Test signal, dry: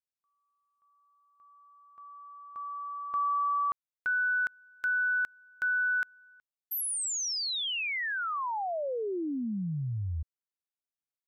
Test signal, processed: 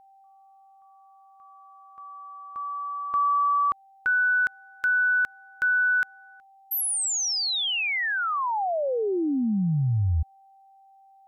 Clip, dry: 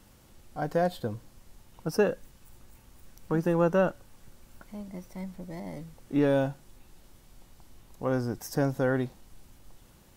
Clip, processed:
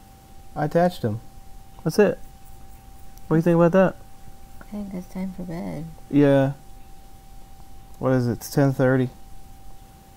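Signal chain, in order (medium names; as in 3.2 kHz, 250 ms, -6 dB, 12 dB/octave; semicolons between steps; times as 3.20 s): whistle 780 Hz -59 dBFS; bass shelf 240 Hz +4.5 dB; trim +6 dB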